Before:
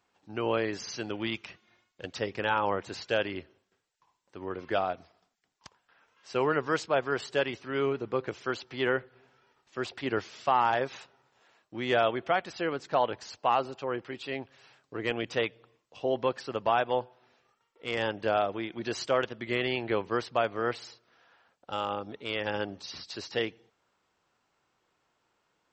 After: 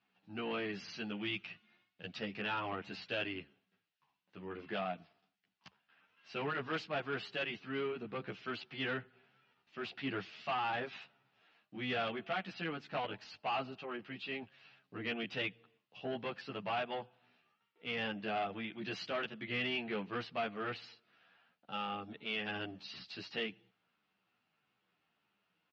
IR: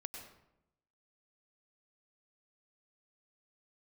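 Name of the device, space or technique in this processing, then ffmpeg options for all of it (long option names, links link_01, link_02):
barber-pole flanger into a guitar amplifier: -filter_complex "[0:a]asplit=2[link_01][link_02];[link_02]adelay=11.5,afreqshift=-1.7[link_03];[link_01][link_03]amix=inputs=2:normalize=1,asoftclip=type=tanh:threshold=-26dB,highpass=78,equalizer=frequency=83:width_type=q:width=4:gain=-8,equalizer=frequency=190:width_type=q:width=4:gain=8,equalizer=frequency=370:width_type=q:width=4:gain=-5,equalizer=frequency=530:width_type=q:width=4:gain=-7,equalizer=frequency=980:width_type=q:width=4:gain=-6,equalizer=frequency=2700:width_type=q:width=4:gain=6,lowpass=frequency=4500:width=0.5412,lowpass=frequency=4500:width=1.3066,volume=-2dB"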